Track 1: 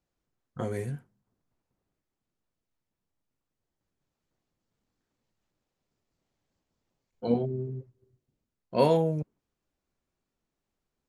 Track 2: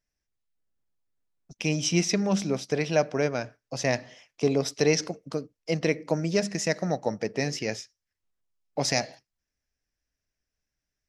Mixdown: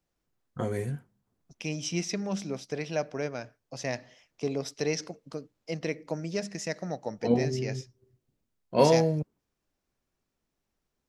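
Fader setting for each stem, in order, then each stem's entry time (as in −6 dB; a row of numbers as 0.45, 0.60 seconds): +1.5, −7.0 decibels; 0.00, 0.00 seconds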